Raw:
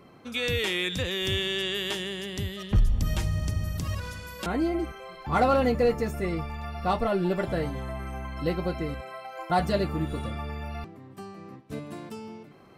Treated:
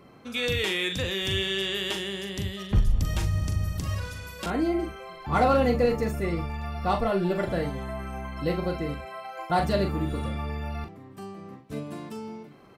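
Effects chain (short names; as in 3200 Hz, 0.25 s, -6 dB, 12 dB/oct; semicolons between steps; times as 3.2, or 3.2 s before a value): doubler 41 ms -7.5 dB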